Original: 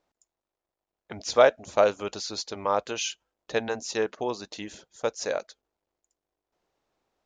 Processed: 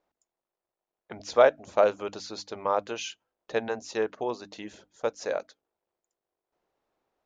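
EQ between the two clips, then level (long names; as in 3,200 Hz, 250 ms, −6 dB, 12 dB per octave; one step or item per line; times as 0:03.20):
low-shelf EQ 150 Hz −5.5 dB
high-shelf EQ 3,200 Hz −10 dB
mains-hum notches 50/100/150/200/250/300 Hz
0.0 dB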